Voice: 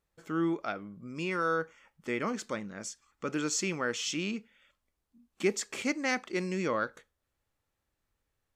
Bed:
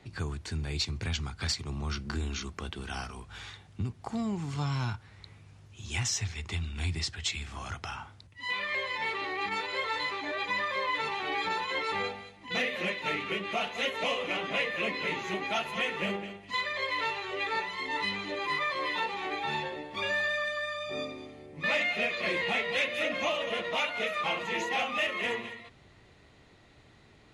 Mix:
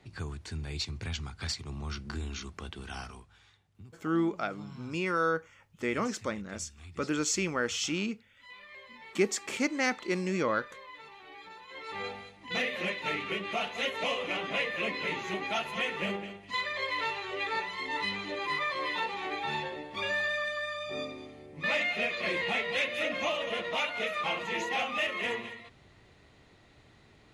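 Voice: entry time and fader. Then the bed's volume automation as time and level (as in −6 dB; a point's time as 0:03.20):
3.75 s, +1.5 dB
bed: 0:03.14 −3.5 dB
0:03.38 −17.5 dB
0:11.62 −17.5 dB
0:12.15 −1 dB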